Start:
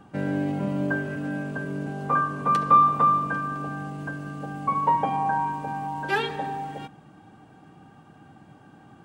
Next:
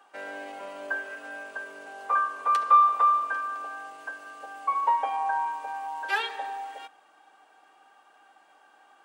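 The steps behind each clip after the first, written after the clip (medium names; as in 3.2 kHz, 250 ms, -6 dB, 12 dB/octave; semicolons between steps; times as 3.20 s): Bessel high-pass 790 Hz, order 4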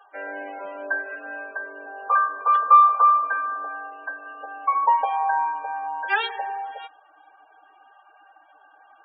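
loudest bins only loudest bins 32; trim +5 dB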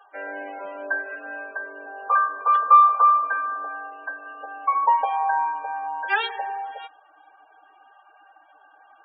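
no audible change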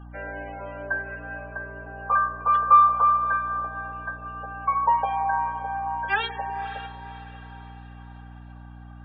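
hum 60 Hz, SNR 16 dB; echo that smears into a reverb 541 ms, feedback 47%, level -13 dB; trim -2 dB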